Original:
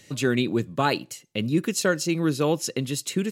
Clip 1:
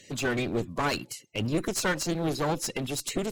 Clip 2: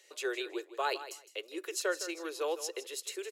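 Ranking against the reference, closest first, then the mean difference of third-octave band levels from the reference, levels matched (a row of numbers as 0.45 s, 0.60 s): 1, 2; 6.0 dB, 11.0 dB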